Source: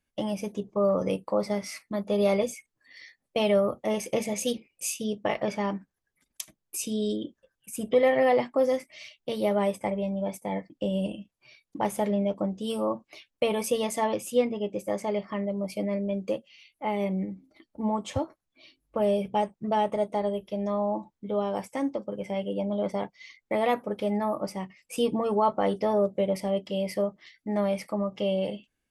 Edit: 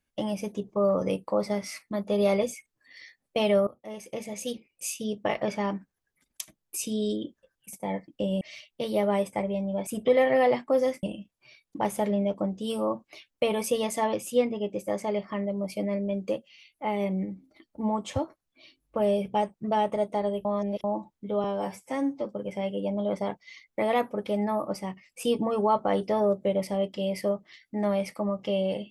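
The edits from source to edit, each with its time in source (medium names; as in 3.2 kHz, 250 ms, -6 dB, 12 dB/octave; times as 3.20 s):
3.67–5.28 s: fade in, from -18 dB
7.73–8.89 s: swap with 10.35–11.03 s
20.45–20.84 s: reverse
21.44–21.98 s: stretch 1.5×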